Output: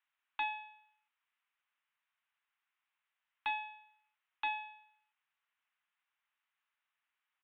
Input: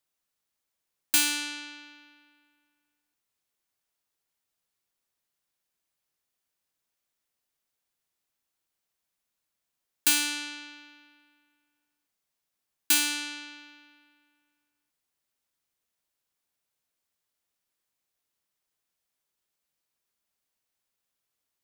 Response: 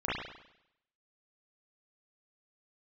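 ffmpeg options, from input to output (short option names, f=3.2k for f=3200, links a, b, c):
-af "highpass=f=330:w=0.5412,highpass=f=330:w=1.3066,equalizer=f=1.2k:t=o:w=0.37:g=-8.5,asetrate=128331,aresample=44100,aresample=8000,asoftclip=type=hard:threshold=-39dB,aresample=44100,volume=9.5dB"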